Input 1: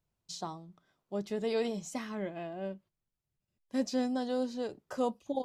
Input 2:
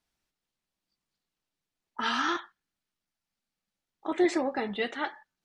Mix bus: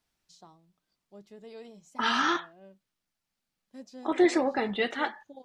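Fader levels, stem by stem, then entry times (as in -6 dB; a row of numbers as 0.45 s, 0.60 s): -14.5 dB, +2.5 dB; 0.00 s, 0.00 s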